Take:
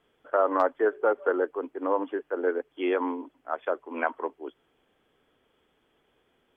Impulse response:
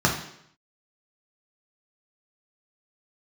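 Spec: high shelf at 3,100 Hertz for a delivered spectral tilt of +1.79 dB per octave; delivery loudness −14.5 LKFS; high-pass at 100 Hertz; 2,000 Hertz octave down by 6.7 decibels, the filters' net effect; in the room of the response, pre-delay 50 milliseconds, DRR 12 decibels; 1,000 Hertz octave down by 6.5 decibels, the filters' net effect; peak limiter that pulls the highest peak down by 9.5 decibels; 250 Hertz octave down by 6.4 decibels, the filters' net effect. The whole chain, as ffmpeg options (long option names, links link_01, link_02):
-filter_complex "[0:a]highpass=100,equalizer=frequency=250:width_type=o:gain=-8.5,equalizer=frequency=1000:width_type=o:gain=-6,equalizer=frequency=2000:width_type=o:gain=-4.5,highshelf=frequency=3100:gain=-6.5,alimiter=level_in=1.5dB:limit=-24dB:level=0:latency=1,volume=-1.5dB,asplit=2[link_01][link_02];[1:a]atrim=start_sample=2205,adelay=50[link_03];[link_02][link_03]afir=irnorm=-1:irlink=0,volume=-28.5dB[link_04];[link_01][link_04]amix=inputs=2:normalize=0,volume=22.5dB"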